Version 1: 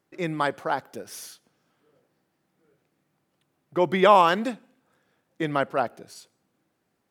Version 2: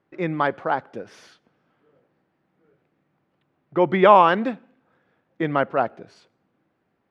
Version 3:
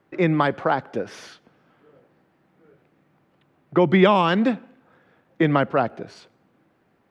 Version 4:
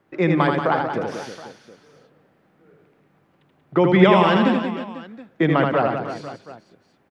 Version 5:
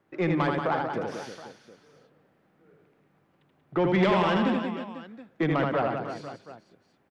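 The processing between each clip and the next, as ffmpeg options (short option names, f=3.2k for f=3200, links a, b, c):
-af "lowpass=2.5k,volume=3.5dB"
-filter_complex "[0:a]acrossover=split=260|3000[a][b][c];[b]acompressor=threshold=-26dB:ratio=4[d];[a][d][c]amix=inputs=3:normalize=0,volume=7.5dB"
-af "aecho=1:1:80|184|319.2|495|723.4:0.631|0.398|0.251|0.158|0.1"
-af "asoftclip=type=tanh:threshold=-11dB,volume=-5.5dB"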